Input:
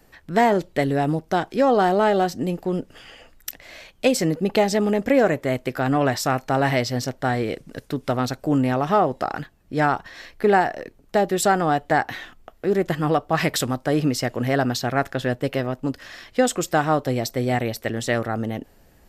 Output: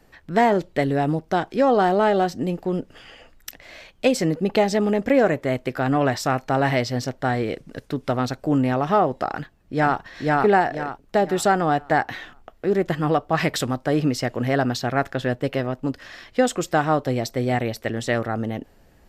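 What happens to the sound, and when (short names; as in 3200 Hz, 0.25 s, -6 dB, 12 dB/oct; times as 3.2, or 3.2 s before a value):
9.31–9.99 echo throw 0.49 s, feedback 35%, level -0.5 dB
whole clip: high shelf 7800 Hz -8.5 dB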